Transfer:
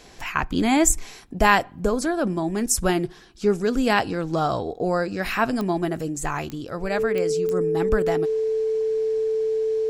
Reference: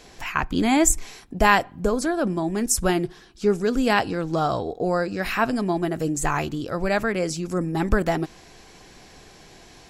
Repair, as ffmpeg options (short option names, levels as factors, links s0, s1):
-af "adeclick=t=4,bandreject=f=440:w=30,asetnsamples=n=441:p=0,asendcmd='6.01 volume volume 3.5dB',volume=1"